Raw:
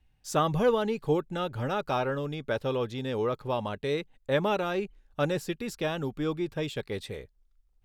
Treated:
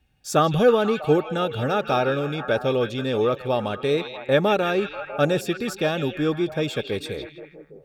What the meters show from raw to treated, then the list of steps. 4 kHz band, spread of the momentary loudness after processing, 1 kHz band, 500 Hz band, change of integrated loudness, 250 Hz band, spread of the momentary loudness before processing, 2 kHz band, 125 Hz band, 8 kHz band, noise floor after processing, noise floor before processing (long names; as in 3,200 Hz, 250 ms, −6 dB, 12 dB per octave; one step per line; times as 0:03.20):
+8.0 dB, 9 LU, +6.5 dB, +7.5 dB, +7.0 dB, +7.0 dB, 8 LU, +8.0 dB, +6.0 dB, +6.0 dB, −51 dBFS, −67 dBFS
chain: notch comb filter 1,000 Hz
on a send: echo through a band-pass that steps 161 ms, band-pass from 3,200 Hz, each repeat −0.7 octaves, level −5 dB
on the sum: level +7.5 dB